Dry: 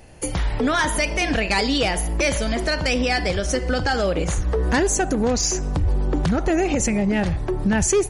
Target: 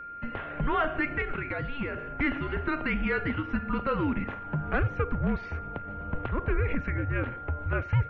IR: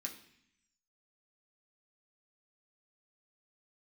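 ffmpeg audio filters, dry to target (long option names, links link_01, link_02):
-filter_complex "[0:a]asettb=1/sr,asplit=3[link_01][link_02][link_03];[link_01]atrim=end=1.214[link_04];[link_02]atrim=start=1.21:end=1.98,asetpts=PTS-STARTPTS,afade=type=in:duration=0.004:curve=qsin,afade=type=out:start_time=0.766:duration=0.004:curve=qsin,acrossover=split=410|1900[link_05][link_06][link_07];[link_05]acompressor=threshold=-26dB:ratio=4[link_08];[link_06]acompressor=threshold=-29dB:ratio=4[link_09];[link_07]acompressor=threshold=-33dB:ratio=4[link_10];[link_08][link_09][link_10]amix=inputs=3:normalize=0[link_11];[link_03]atrim=start=1.976[link_12];[link_04][link_11]acrossfade=duration=0.004:curve1=hsin:curve2=qsin[link_13];[link_13][link_12]acrossfade=duration=0.004:curve1=qsin:curve2=hsin,highpass=frequency=230:width_type=q:width=0.5412,highpass=frequency=230:width_type=q:width=1.307,lowpass=frequency=2900:width_type=q:width=0.5176,lowpass=frequency=2900:width_type=q:width=0.7071,lowpass=frequency=2900:width_type=q:width=1.932,afreqshift=-290,aeval=exprs='val(0)+0.0224*sin(2*PI*1400*n/s)':channel_layout=same,volume=-5.5dB"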